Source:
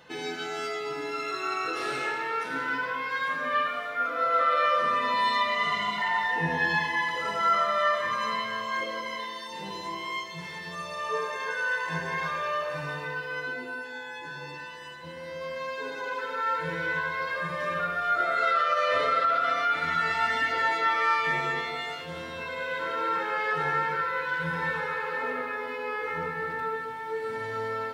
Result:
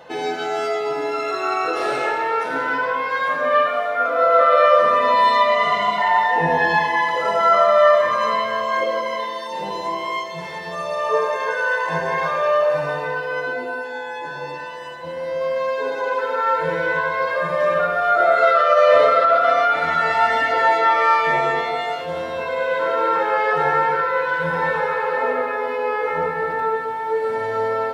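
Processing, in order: peaking EQ 650 Hz +13.5 dB 1.3 oct; trim +3.5 dB

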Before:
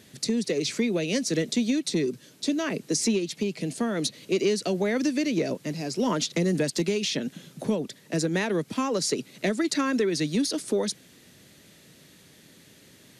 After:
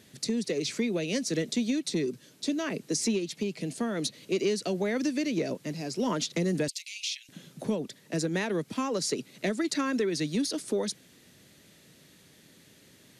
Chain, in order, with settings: 6.68–7.29 s: elliptic high-pass 2.3 kHz, stop band 60 dB; trim -3.5 dB

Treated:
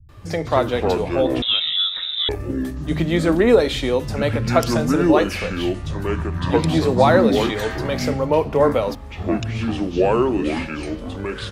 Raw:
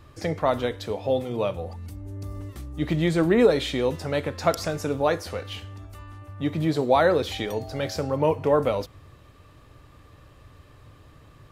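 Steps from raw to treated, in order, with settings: ever faster or slower copies 128 ms, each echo -6 st, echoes 2; bands offset in time lows, highs 90 ms, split 160 Hz; 1.42–2.29 s: frequency inversion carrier 3.8 kHz; trim +4.5 dB

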